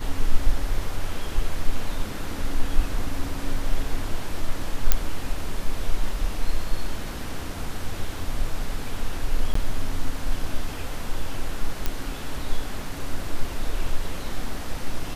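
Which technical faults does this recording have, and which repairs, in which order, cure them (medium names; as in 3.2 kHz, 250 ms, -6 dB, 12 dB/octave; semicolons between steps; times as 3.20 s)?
4.92 s: pop -2 dBFS
9.54–9.55 s: dropout 14 ms
11.86 s: pop -10 dBFS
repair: de-click; interpolate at 9.54 s, 14 ms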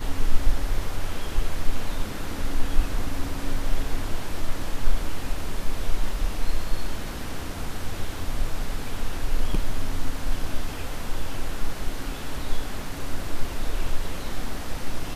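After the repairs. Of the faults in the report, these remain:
nothing left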